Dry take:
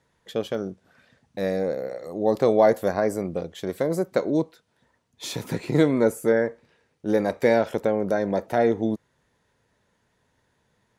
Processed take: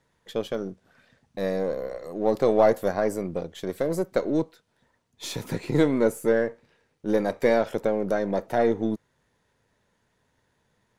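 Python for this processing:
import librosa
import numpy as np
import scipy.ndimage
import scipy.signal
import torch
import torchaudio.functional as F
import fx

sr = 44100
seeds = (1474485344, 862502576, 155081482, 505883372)

y = np.where(x < 0.0, 10.0 ** (-3.0 / 20.0) * x, x)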